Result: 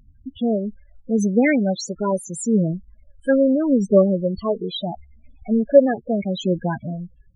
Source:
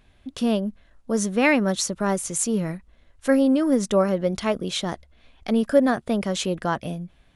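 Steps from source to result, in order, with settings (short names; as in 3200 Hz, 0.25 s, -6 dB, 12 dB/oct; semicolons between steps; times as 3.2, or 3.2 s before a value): phaser 0.76 Hz, delay 2.4 ms, feedback 38%; loudest bins only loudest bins 8; gain +3 dB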